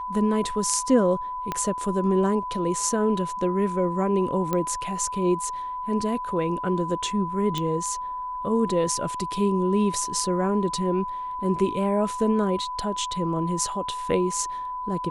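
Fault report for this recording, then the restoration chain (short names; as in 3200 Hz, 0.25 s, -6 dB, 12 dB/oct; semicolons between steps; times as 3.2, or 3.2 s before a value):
tone 1000 Hz -29 dBFS
1.52 pop -13 dBFS
4.53 pop -12 dBFS
7.58 pop -14 dBFS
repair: de-click; notch 1000 Hz, Q 30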